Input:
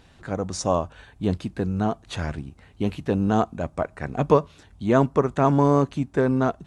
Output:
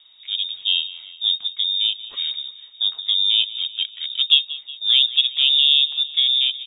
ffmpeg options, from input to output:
-af "aecho=1:1:183|366|549|732|915:0.15|0.0853|0.0486|0.0277|0.0158,lowpass=f=3200:t=q:w=0.5098,lowpass=f=3200:t=q:w=0.6013,lowpass=f=3200:t=q:w=0.9,lowpass=f=3200:t=q:w=2.563,afreqshift=-3800,aexciter=amount=5.8:drive=0.9:freq=3000,volume=0.398"

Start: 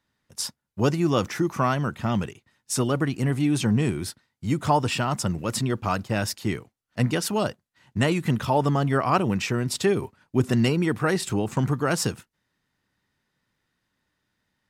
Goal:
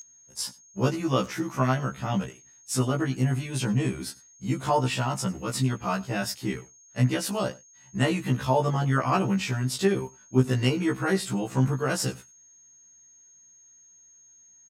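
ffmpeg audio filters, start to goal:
-af "aecho=1:1:94:0.075,aeval=exprs='val(0)+0.0316*sin(2*PI*6500*n/s)':c=same,afftfilt=real='re*1.73*eq(mod(b,3),0)':imag='im*1.73*eq(mod(b,3),0)':win_size=2048:overlap=0.75"

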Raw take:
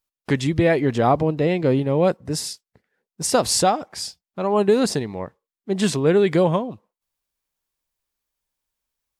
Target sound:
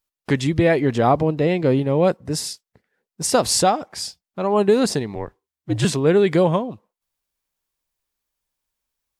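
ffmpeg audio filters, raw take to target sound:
-filter_complex "[0:a]asettb=1/sr,asplit=3[s0][s1][s2];[s0]atrim=end=5.154[s3];[s1]atrim=start=5.15:end=5.85,asetpts=PTS-STARTPTS,afade=t=in:d=0.004:c=qsin,afade=t=out:st=0.696:d=0.004:c=qsin,afreqshift=-75[s4];[s2]atrim=start=5.846[s5];[s3][s4]acrossfade=d=0.004:c1=hsin:c2=qsin[s6];[s6][s5]acrossfade=d=0.004:c1=qsin:c2=hsin,volume=1.12"

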